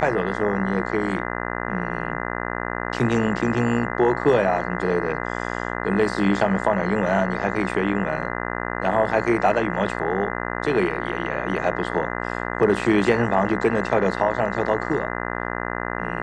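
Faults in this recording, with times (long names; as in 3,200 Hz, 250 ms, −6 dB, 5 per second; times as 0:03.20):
mains buzz 60 Hz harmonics 34 −28 dBFS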